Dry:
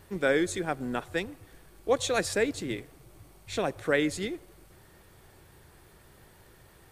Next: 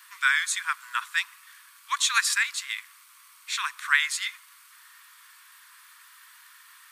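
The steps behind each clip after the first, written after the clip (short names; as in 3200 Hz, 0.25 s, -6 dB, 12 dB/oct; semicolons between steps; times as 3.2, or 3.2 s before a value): steep high-pass 1000 Hz 96 dB/oct; gain +9 dB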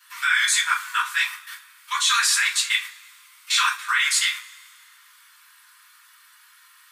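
level quantiser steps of 17 dB; two-slope reverb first 0.26 s, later 2 s, from -27 dB, DRR -8.5 dB; gain +5.5 dB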